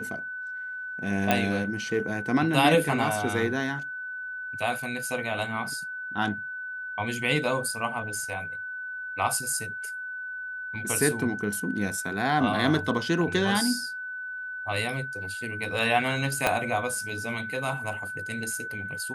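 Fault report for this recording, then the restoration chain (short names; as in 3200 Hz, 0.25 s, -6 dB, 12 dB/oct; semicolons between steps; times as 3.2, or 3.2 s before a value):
tone 1500 Hz -33 dBFS
1.31 pop -8 dBFS
16.47 pop -7 dBFS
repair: de-click; notch 1500 Hz, Q 30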